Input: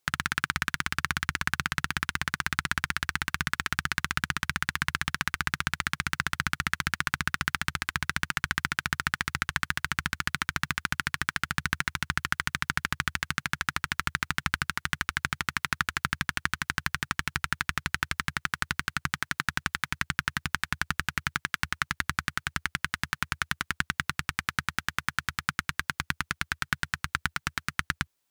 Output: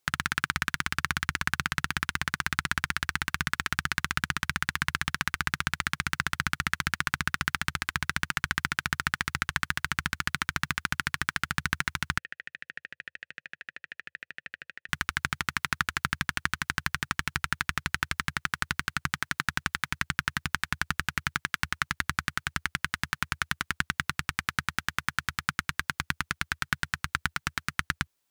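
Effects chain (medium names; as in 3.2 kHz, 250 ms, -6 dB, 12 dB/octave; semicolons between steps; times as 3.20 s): 12.18–14.89 s: vowel filter e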